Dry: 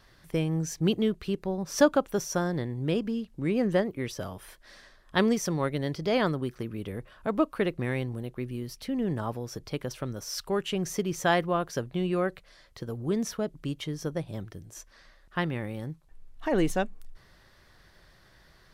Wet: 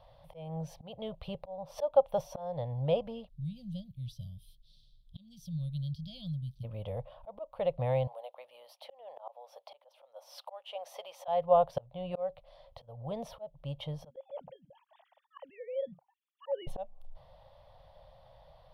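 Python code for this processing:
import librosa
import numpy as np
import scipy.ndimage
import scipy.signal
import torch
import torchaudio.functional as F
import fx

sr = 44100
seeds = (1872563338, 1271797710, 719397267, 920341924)

y = fx.ellip_bandstop(x, sr, low_hz=190.0, high_hz=3800.0, order=3, stop_db=40, at=(3.28, 6.63), fade=0.02)
y = fx.highpass(y, sr, hz=600.0, slope=24, at=(8.07, 11.28))
y = fx.sine_speech(y, sr, at=(14.1, 16.67))
y = fx.curve_eq(y, sr, hz=(140.0, 210.0, 380.0, 540.0, 860.0, 1600.0, 3300.0, 7100.0, 10000.0), db=(0, -13, -22, 11, 8, -18, -3, -25, -15))
y = fx.auto_swell(y, sr, attack_ms=394.0)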